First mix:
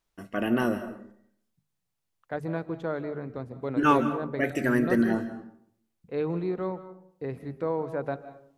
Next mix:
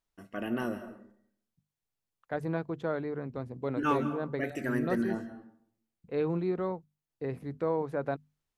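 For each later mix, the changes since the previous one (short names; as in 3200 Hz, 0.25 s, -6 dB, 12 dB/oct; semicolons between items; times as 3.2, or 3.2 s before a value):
first voice -7.5 dB; second voice: send off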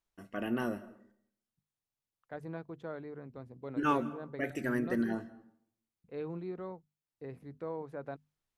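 first voice: send -7.5 dB; second voice -9.5 dB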